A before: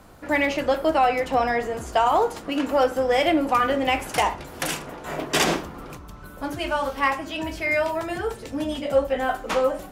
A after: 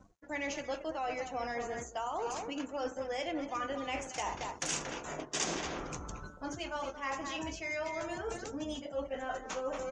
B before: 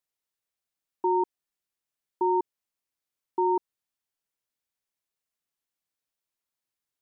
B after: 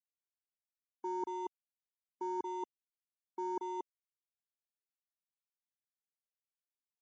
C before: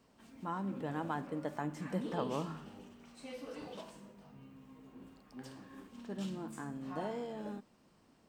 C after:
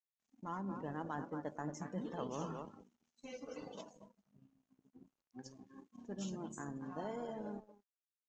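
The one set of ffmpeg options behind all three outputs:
ffmpeg -i in.wav -filter_complex "[0:a]asplit=2[link_01][link_02];[link_02]adelay=230,highpass=300,lowpass=3400,asoftclip=type=hard:threshold=-19.5dB,volume=-8dB[link_03];[link_01][link_03]amix=inputs=2:normalize=0,areverse,acompressor=threshold=-37dB:ratio=4,areverse,aeval=exprs='sgn(val(0))*max(abs(val(0))-0.00178,0)':channel_layout=same,lowpass=frequency=6600:width_type=q:width=4.5,afftdn=noise_reduction=20:noise_floor=-53" out.wav

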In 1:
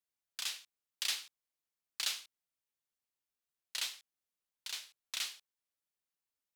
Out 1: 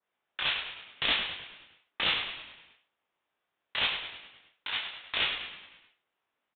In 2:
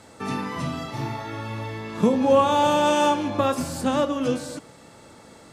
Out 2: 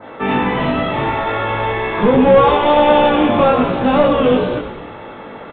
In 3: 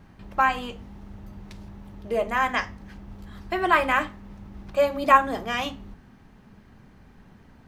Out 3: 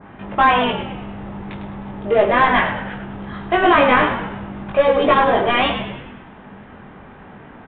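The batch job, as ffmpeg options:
ffmpeg -i in.wav -filter_complex "[0:a]adynamicequalizer=threshold=0.00631:dfrequency=3100:dqfactor=1.3:tfrequency=3100:tqfactor=1.3:attack=5:release=100:ratio=0.375:range=2:mode=boostabove:tftype=bell,asplit=2[link_01][link_02];[link_02]highpass=frequency=720:poles=1,volume=28dB,asoftclip=type=tanh:threshold=-2dB[link_03];[link_01][link_03]amix=inputs=2:normalize=0,lowpass=frequency=1000:poles=1,volume=-6dB,asplit=2[link_04][link_05];[link_05]adelay=20,volume=-2dB[link_06];[link_04][link_06]amix=inputs=2:normalize=0,asplit=2[link_07][link_08];[link_08]asplit=6[link_09][link_10][link_11][link_12][link_13][link_14];[link_09]adelay=103,afreqshift=-65,volume=-8.5dB[link_15];[link_10]adelay=206,afreqshift=-130,volume=-14.2dB[link_16];[link_11]adelay=309,afreqshift=-195,volume=-19.9dB[link_17];[link_12]adelay=412,afreqshift=-260,volume=-25.5dB[link_18];[link_13]adelay=515,afreqshift=-325,volume=-31.2dB[link_19];[link_14]adelay=618,afreqshift=-390,volume=-36.9dB[link_20];[link_15][link_16][link_17][link_18][link_19][link_20]amix=inputs=6:normalize=0[link_21];[link_07][link_21]amix=inputs=2:normalize=0,aresample=8000,aresample=44100,volume=-2.5dB" out.wav

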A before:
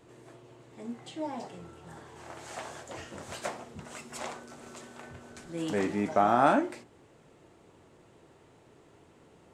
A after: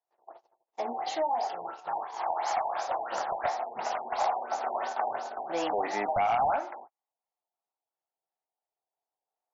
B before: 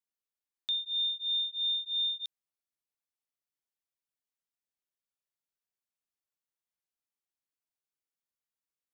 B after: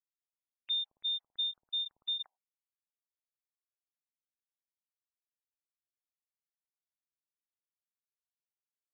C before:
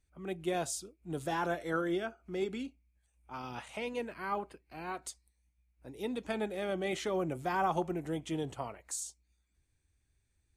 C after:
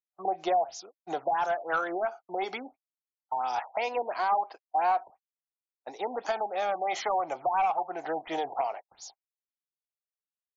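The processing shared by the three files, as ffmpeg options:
ffmpeg -i in.wav -filter_complex "[0:a]agate=range=-52dB:threshold=-48dB:ratio=16:detection=peak,highpass=frequency=760:width_type=q:width=5.3,highshelf=frequency=3900:width_type=q:width=1.5:gain=6.5,acompressor=threshold=-40dB:ratio=3,aeval=exprs='0.0596*sin(PI/2*1.78*val(0)/0.0596)':channel_layout=same,aphaser=in_gain=1:out_gain=1:delay=1:decay=0.24:speed=0.21:type=triangular,acrossover=split=2600[link_01][link_02];[link_02]acompressor=threshold=-40dB:ratio=4:attack=1:release=60[link_03];[link_01][link_03]amix=inputs=2:normalize=0,afftfilt=real='re*lt(b*sr/1024,980*pow(7400/980,0.5+0.5*sin(2*PI*2.9*pts/sr)))':imag='im*lt(b*sr/1024,980*pow(7400/980,0.5+0.5*sin(2*PI*2.9*pts/sr)))':win_size=1024:overlap=0.75,volume=4.5dB" out.wav

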